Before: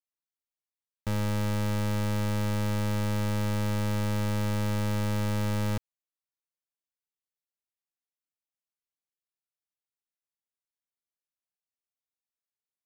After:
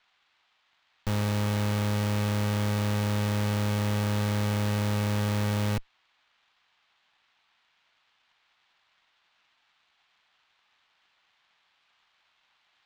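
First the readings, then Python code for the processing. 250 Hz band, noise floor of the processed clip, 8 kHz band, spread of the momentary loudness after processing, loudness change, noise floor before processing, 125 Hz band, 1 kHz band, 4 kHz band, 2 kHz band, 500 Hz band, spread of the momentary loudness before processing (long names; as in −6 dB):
+1.5 dB, −71 dBFS, +2.0 dB, 2 LU, +1.5 dB, below −85 dBFS, +1.5 dB, +2.0 dB, +4.0 dB, +3.0 dB, +1.5 dB, 2 LU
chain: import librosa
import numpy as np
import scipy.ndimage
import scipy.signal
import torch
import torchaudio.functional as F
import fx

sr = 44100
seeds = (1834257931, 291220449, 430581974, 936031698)

y = fx.sample_hold(x, sr, seeds[0], rate_hz=3500.0, jitter_pct=0)
y = fx.dmg_noise_band(y, sr, seeds[1], low_hz=730.0, high_hz=3900.0, level_db=-62.0)
y = fx.cheby_harmonics(y, sr, harmonics=(3, 4, 6), levels_db=(-13, -8, -9), full_scale_db=-26.5)
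y = y * librosa.db_to_amplitude(1.0)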